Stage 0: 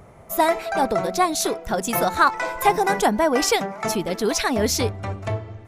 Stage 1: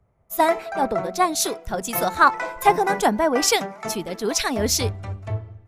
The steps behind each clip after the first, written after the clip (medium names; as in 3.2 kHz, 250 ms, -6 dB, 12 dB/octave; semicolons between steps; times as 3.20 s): three bands expanded up and down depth 70%; trim -1 dB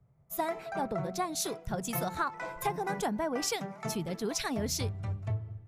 peaking EQ 140 Hz +15 dB 0.76 oct; compression 5:1, threshold -21 dBFS, peak gain reduction 11.5 dB; trim -8 dB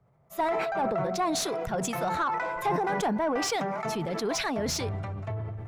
overdrive pedal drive 16 dB, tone 1.4 kHz, clips at -17 dBFS; decay stretcher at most 23 dB/s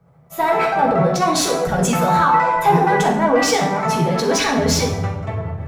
reverberation RT60 0.75 s, pre-delay 3 ms, DRR -2.5 dB; trim +7 dB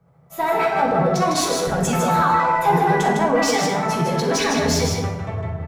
delay 155 ms -4.5 dB; trim -3.5 dB